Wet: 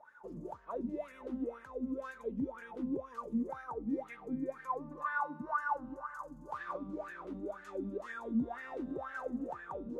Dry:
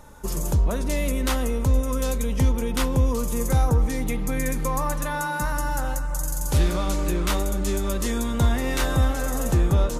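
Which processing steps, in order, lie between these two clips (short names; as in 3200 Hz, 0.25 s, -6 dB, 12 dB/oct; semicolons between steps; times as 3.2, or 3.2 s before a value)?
4.91–6.95 bell 1100 Hz +14.5 dB 0.34 oct; limiter -17 dBFS, peak gain reduction 7 dB; wah 2 Hz 220–1700 Hz, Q 11; gain +3 dB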